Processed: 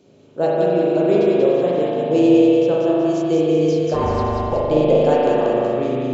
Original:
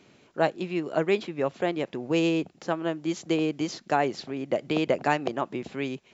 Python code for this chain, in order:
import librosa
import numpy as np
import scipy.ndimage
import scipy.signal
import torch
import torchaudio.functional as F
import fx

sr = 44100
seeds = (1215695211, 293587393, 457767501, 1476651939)

p1 = fx.graphic_eq_10(x, sr, hz=(125, 500, 1000, 2000), db=(3, 8, -5, -11))
p2 = fx.ring_mod(p1, sr, carrier_hz=330.0, at=(3.93, 4.52), fade=0.02)
p3 = p2 + fx.echo_feedback(p2, sr, ms=187, feedback_pct=49, wet_db=-3, dry=0)
y = fx.rev_spring(p3, sr, rt60_s=2.7, pass_ms=(39,), chirp_ms=55, drr_db=-5.0)